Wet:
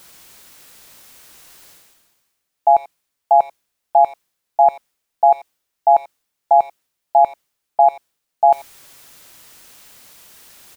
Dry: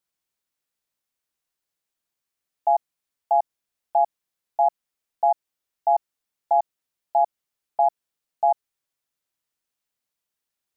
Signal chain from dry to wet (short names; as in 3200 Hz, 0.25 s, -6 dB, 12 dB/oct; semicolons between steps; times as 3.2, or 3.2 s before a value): reverse; upward compressor, threshold -28 dBFS; reverse; speakerphone echo 90 ms, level -20 dB; gain +7.5 dB